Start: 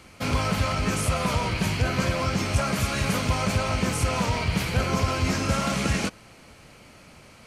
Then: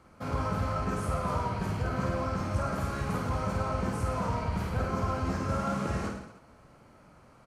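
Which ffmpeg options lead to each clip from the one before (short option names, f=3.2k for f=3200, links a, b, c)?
-filter_complex "[0:a]highshelf=f=1.8k:t=q:w=1.5:g=-9.5,asplit=2[a][b];[b]aecho=0:1:50|105|165.5|232|305.3:0.631|0.398|0.251|0.158|0.1[c];[a][c]amix=inputs=2:normalize=0,volume=-8dB"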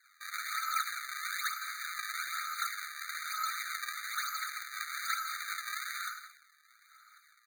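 -af "highpass=f=54:w=0.5412,highpass=f=54:w=1.3066,acrusher=samples=35:mix=1:aa=0.000001:lfo=1:lforange=56:lforate=1.1,afftfilt=real='re*eq(mod(floor(b*sr/1024/1200),2),1)':imag='im*eq(mod(floor(b*sr/1024/1200),2),1)':win_size=1024:overlap=0.75,volume=5dB"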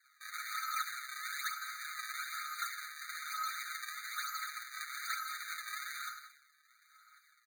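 -af "aecho=1:1:7.1:0.73,volume=-5.5dB"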